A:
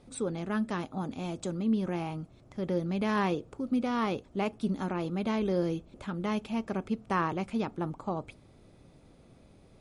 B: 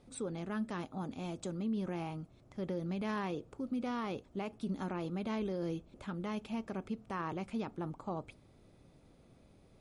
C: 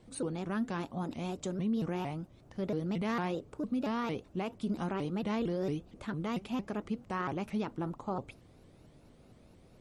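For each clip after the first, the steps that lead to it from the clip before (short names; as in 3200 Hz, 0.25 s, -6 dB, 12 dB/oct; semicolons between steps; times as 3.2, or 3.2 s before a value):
limiter -24 dBFS, peak gain reduction 7 dB; gain -5 dB
shaped vibrato saw up 4.4 Hz, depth 250 cents; gain +3.5 dB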